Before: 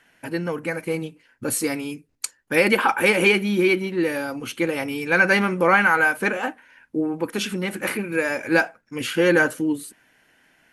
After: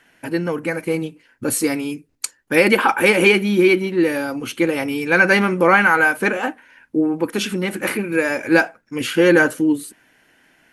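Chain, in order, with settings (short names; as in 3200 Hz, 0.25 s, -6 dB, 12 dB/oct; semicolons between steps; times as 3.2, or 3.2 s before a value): bell 320 Hz +3 dB 0.77 oct; gain +3 dB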